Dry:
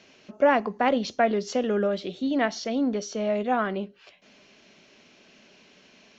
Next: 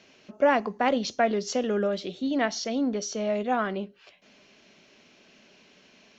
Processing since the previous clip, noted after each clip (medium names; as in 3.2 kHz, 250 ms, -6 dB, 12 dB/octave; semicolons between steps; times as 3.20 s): dynamic bell 6.4 kHz, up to +6 dB, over -49 dBFS, Q 1; trim -1.5 dB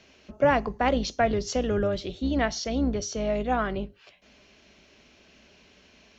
octave divider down 2 oct, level -3 dB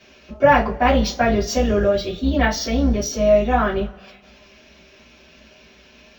two-slope reverb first 0.21 s, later 1.6 s, from -27 dB, DRR -8.5 dB; decimation joined by straight lines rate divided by 2×; trim -1 dB